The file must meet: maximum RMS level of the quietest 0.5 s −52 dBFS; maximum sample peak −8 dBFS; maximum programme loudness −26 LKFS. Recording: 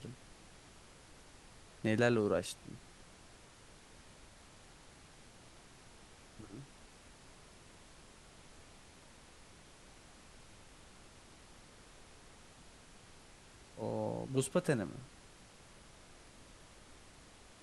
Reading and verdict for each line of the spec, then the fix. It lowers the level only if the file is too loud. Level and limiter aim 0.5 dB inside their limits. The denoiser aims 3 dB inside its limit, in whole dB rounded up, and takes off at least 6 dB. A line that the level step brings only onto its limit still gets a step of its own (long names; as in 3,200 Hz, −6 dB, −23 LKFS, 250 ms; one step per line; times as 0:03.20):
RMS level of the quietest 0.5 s −59 dBFS: in spec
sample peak −17.0 dBFS: in spec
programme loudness −36.5 LKFS: in spec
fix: no processing needed